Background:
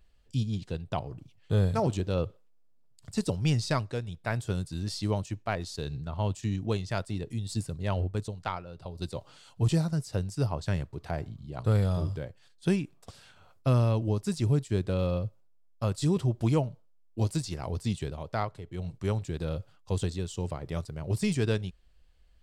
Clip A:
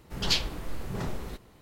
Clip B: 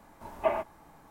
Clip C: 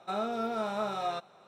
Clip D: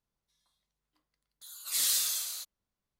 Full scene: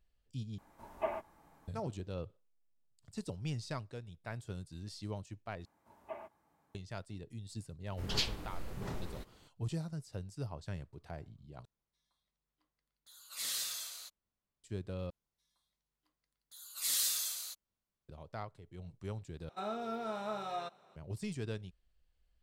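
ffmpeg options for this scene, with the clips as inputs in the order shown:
ffmpeg -i bed.wav -i cue0.wav -i cue1.wav -i cue2.wav -i cue3.wav -filter_complex "[2:a]asplit=2[link_01][link_02];[4:a]asplit=2[link_03][link_04];[0:a]volume=-12.5dB[link_05];[link_02]highpass=70[link_06];[link_03]highshelf=frequency=5400:gain=-9[link_07];[link_05]asplit=6[link_08][link_09][link_10][link_11][link_12][link_13];[link_08]atrim=end=0.584[link_14];[link_01]atrim=end=1.1,asetpts=PTS-STARTPTS,volume=-8.5dB[link_15];[link_09]atrim=start=1.676:end=5.654[link_16];[link_06]atrim=end=1.1,asetpts=PTS-STARTPTS,volume=-18dB[link_17];[link_10]atrim=start=6.746:end=11.654[link_18];[link_07]atrim=end=2.99,asetpts=PTS-STARTPTS,volume=-4dB[link_19];[link_11]atrim=start=14.636:end=15.104[link_20];[link_04]atrim=end=2.99,asetpts=PTS-STARTPTS,volume=-4.5dB[link_21];[link_12]atrim=start=18.086:end=19.494[link_22];[3:a]atrim=end=1.47,asetpts=PTS-STARTPTS,volume=-6.5dB[link_23];[link_13]atrim=start=20.956[link_24];[1:a]atrim=end=1.61,asetpts=PTS-STARTPTS,volume=-7.5dB,afade=type=in:duration=0.004:curve=hsin,afade=type=out:start_time=1.606:duration=0.004:curve=hsin,adelay=7870[link_25];[link_14][link_15]acrossfade=duration=0.004:curve1=hsin:curve2=hsin[link_26];[link_26][link_16]acrossfade=duration=0.004:curve1=hsin:curve2=hsin[link_27];[link_27][link_17]acrossfade=duration=0.004:curve1=hsin:curve2=hsin[link_28];[link_28][link_18]acrossfade=duration=0.004:curve1=hsin:curve2=hsin[link_29];[link_29][link_19]acrossfade=duration=0.004:curve1=hsin:curve2=hsin[link_30];[link_30][link_20]acrossfade=duration=0.004:curve1=hsin:curve2=hsin[link_31];[link_31][link_21]acrossfade=duration=0.004:curve1=hsin:curve2=hsin[link_32];[link_32][link_22]acrossfade=duration=0.004:curve1=hsin:curve2=hsin[link_33];[link_33][link_23]acrossfade=duration=0.004:curve1=hsin:curve2=hsin[link_34];[link_34][link_24]acrossfade=duration=0.004:curve1=hsin:curve2=hsin[link_35];[link_35][link_25]amix=inputs=2:normalize=0" out.wav

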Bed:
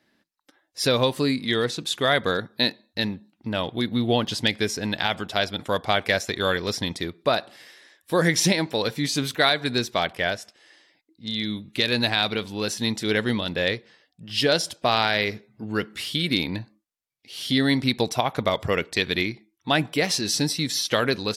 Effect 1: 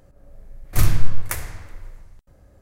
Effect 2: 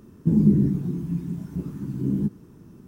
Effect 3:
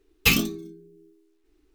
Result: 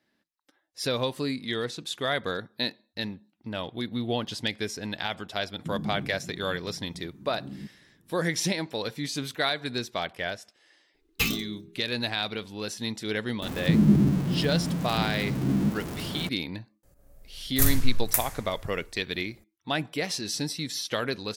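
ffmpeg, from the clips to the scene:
ffmpeg -i bed.wav -i cue0.wav -i cue1.wav -i cue2.wav -filter_complex "[2:a]asplit=2[link_01][link_02];[0:a]volume=-7dB[link_03];[link_02]aeval=exprs='val(0)+0.5*0.0422*sgn(val(0))':channel_layout=same[link_04];[1:a]aemphasis=mode=production:type=75kf[link_05];[link_01]atrim=end=2.87,asetpts=PTS-STARTPTS,volume=-16dB,afade=type=in:duration=0.004:curve=hsin,afade=type=out:start_time=2.866:duration=0.004:curve=hsin,adelay=5390[link_06];[3:a]atrim=end=1.74,asetpts=PTS-STARTPTS,volume=-7dB,afade=type=in:duration=0.004:curve=hsin,afade=type=out:start_time=1.736:duration=0.004:curve=hsin,adelay=10940[link_07];[link_04]atrim=end=2.87,asetpts=PTS-STARTPTS,volume=-2.5dB,afade=type=in:duration=0.004:curve=hsin,afade=type=out:start_time=2.866:duration=0.004:curve=hsin,adelay=13420[link_08];[link_05]atrim=end=2.61,asetpts=PTS-STARTPTS,volume=-9dB,afade=type=in:duration=0.004:curve=hsin,afade=type=out:start_time=2.606:duration=0.004:curve=hsin,adelay=16830[link_09];[link_03][link_06][link_07][link_08][link_09]amix=inputs=5:normalize=0" out.wav

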